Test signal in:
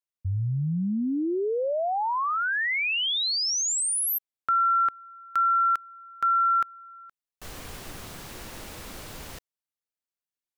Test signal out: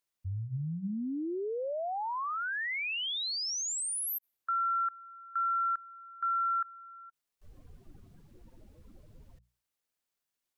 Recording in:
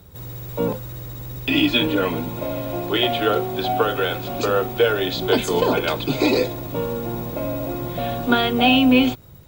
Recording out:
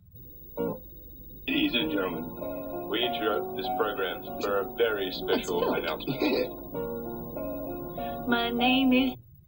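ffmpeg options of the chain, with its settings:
-af "acompressor=mode=upward:threshold=-37dB:ratio=4:attack=0.28:release=30:knee=2.83:detection=peak,afftdn=nr=24:nf=-34,bandreject=f=60:t=h:w=6,bandreject=f=120:t=h:w=6,bandreject=f=180:t=h:w=6,volume=-8dB"

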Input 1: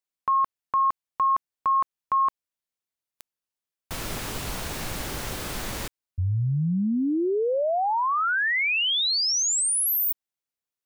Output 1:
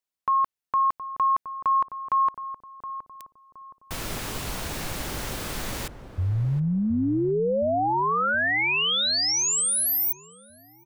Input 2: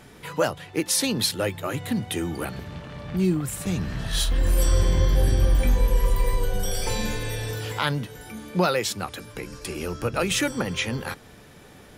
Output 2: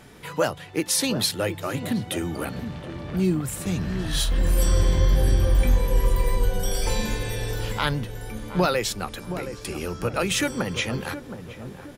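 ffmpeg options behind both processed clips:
-filter_complex "[0:a]asplit=2[a][b];[b]adelay=719,lowpass=f=810:p=1,volume=-9dB,asplit=2[c][d];[d]adelay=719,lowpass=f=810:p=1,volume=0.51,asplit=2[e][f];[f]adelay=719,lowpass=f=810:p=1,volume=0.51,asplit=2[g][h];[h]adelay=719,lowpass=f=810:p=1,volume=0.51,asplit=2[i][j];[j]adelay=719,lowpass=f=810:p=1,volume=0.51,asplit=2[k][l];[l]adelay=719,lowpass=f=810:p=1,volume=0.51[m];[a][c][e][g][i][k][m]amix=inputs=7:normalize=0"

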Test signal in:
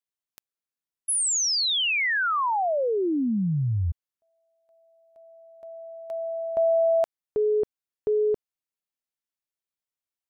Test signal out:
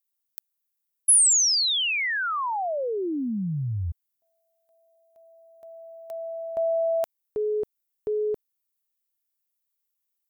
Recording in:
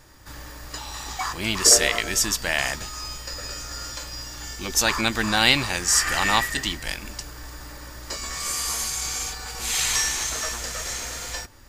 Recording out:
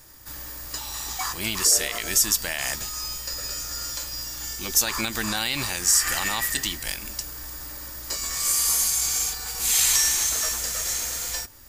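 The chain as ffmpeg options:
-af "alimiter=limit=-12.5dB:level=0:latency=1:release=80,aemphasis=mode=production:type=50fm,volume=-3dB"

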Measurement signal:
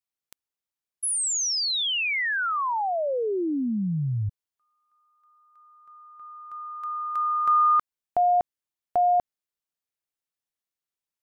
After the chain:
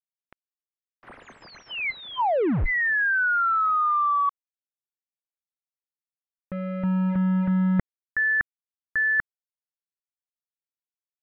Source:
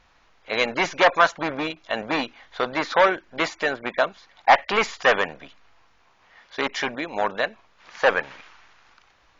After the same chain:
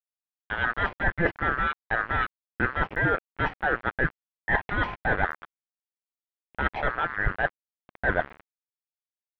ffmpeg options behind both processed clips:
-af "afftfilt=real='real(if(lt(b,960),b+48*(1-2*mod(floor(b/48),2)),b),0)':imag='imag(if(lt(b,960),b+48*(1-2*mod(floor(b/48),2)),b),0)':win_size=2048:overlap=0.75,lowshelf=f=88:g=11,areverse,acompressor=threshold=-26dB:ratio=12:attack=7.8:release=223:knee=1:detection=peak,areverse,aeval=exprs='val(0)*gte(abs(val(0)),0.02)':c=same,lowpass=f=2.1k:w=0.5412,lowpass=f=2.1k:w=1.3066,volume=6.5dB"

